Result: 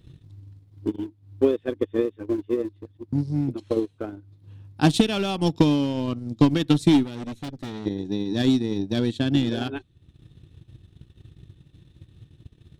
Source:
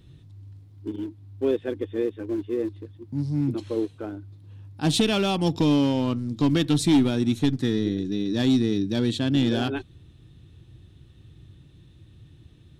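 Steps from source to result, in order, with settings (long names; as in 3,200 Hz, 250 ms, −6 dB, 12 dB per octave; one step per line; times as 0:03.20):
transient designer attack +10 dB, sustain −9 dB
0:07.05–0:07.86: tube saturation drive 28 dB, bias 0.65
level −2 dB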